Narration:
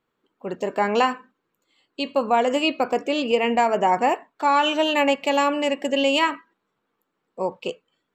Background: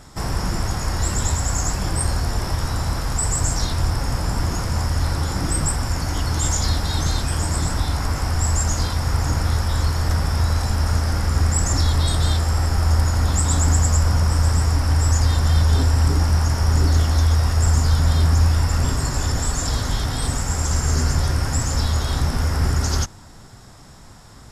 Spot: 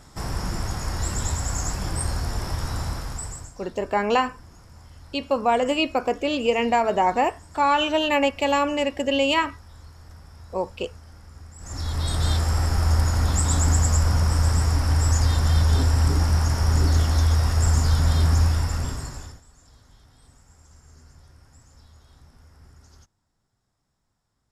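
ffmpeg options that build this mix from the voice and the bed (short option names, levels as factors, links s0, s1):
-filter_complex "[0:a]adelay=3150,volume=0.891[s0];[1:a]volume=7.94,afade=t=out:st=2.82:d=0.7:silence=0.0944061,afade=t=in:st=11.58:d=0.76:silence=0.0707946,afade=t=out:st=18.37:d=1.04:silence=0.0354813[s1];[s0][s1]amix=inputs=2:normalize=0"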